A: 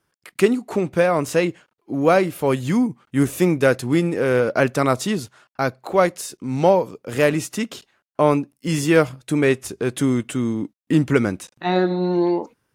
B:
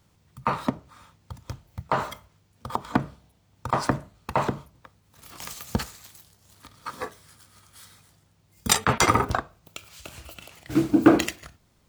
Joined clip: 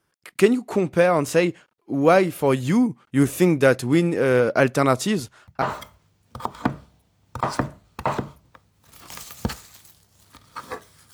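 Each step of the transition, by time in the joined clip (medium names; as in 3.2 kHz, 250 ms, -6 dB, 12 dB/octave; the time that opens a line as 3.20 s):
A
5.11 s: add B from 1.41 s 0.51 s -14.5 dB
5.62 s: go over to B from 1.92 s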